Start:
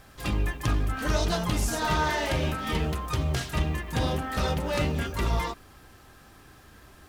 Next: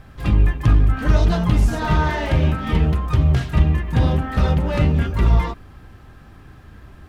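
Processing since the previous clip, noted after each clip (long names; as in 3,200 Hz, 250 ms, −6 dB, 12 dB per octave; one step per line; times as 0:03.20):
bass and treble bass +9 dB, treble −11 dB
level +3.5 dB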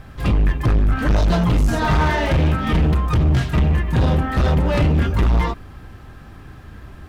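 hard clipping −16.5 dBFS, distortion −8 dB
level +4 dB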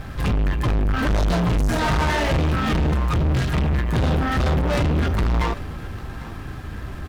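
leveller curve on the samples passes 3
single-tap delay 797 ms −19 dB
level −5 dB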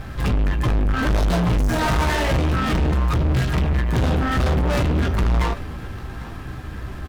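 stylus tracing distortion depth 0.049 ms
double-tracking delay 16 ms −11 dB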